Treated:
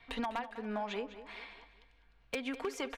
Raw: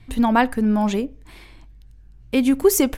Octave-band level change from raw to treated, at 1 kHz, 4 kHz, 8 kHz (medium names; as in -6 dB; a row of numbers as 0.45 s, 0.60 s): -16.0 dB, -11.5 dB, -25.5 dB